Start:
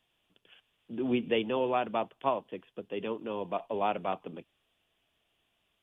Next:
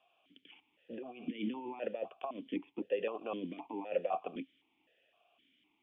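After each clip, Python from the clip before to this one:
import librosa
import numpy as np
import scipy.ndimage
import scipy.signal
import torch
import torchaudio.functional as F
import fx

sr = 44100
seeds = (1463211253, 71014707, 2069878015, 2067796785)

y = fx.over_compress(x, sr, threshold_db=-37.0, ratio=-1.0)
y = fx.vowel_held(y, sr, hz=3.9)
y = y * 10.0 ** (10.0 / 20.0)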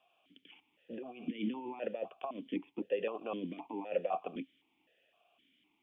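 y = fx.peak_eq(x, sr, hz=180.0, db=2.5, octaves=0.77)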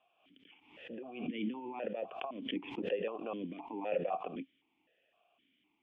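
y = scipy.signal.sosfilt(scipy.signal.butter(2, 3200.0, 'lowpass', fs=sr, output='sos'), x)
y = fx.pre_swell(y, sr, db_per_s=80.0)
y = y * 10.0 ** (-1.5 / 20.0)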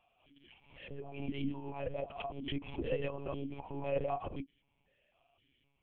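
y = fx.dynamic_eq(x, sr, hz=1600.0, q=0.93, threshold_db=-52.0, ratio=4.0, max_db=-3)
y = fx.lpc_monotone(y, sr, seeds[0], pitch_hz=140.0, order=10)
y = y * 10.0 ** (1.0 / 20.0)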